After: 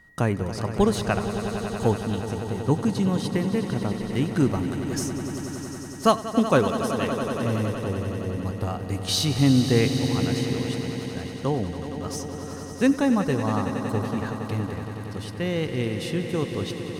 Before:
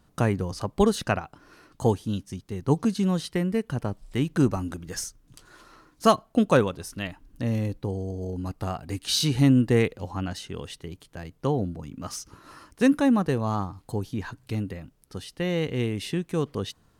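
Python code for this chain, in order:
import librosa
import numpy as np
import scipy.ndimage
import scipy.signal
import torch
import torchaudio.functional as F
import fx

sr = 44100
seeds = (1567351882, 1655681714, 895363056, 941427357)

y = x + 10.0 ** (-53.0 / 20.0) * np.sin(2.0 * np.pi * 1900.0 * np.arange(len(x)) / sr)
y = fx.echo_swell(y, sr, ms=93, loudest=5, wet_db=-12.5)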